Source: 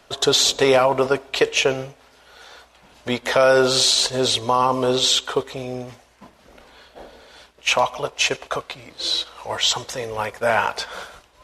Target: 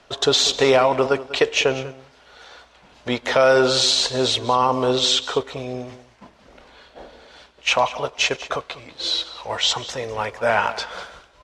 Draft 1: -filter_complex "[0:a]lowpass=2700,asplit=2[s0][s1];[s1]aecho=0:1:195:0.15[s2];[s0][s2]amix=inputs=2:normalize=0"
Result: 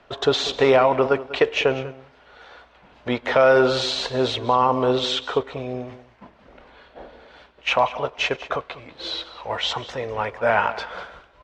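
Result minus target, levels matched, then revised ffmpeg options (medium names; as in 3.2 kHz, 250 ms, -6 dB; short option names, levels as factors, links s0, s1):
8 kHz band -11.5 dB
-filter_complex "[0:a]lowpass=6500,asplit=2[s0][s1];[s1]aecho=0:1:195:0.15[s2];[s0][s2]amix=inputs=2:normalize=0"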